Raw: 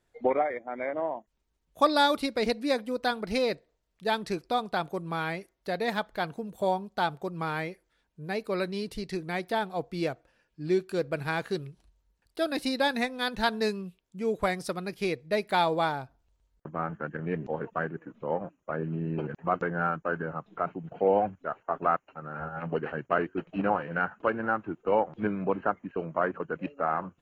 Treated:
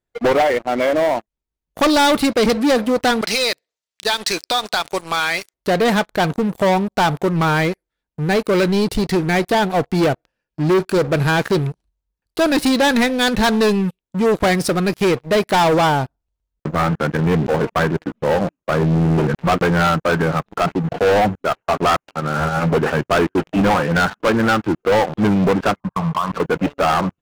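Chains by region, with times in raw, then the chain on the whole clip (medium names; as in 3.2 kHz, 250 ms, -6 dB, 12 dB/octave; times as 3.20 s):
3.21–5.54 s: frequency weighting ITU-R 468 + compression 3:1, threshold -31 dBFS
25.80–26.32 s: FFT filter 180 Hz 0 dB, 380 Hz -29 dB, 1.1 kHz +13 dB, 1.8 kHz -29 dB + compression, threshold -31 dBFS
whole clip: bass shelf 440 Hz +3.5 dB; waveshaping leveller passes 5; trim -1 dB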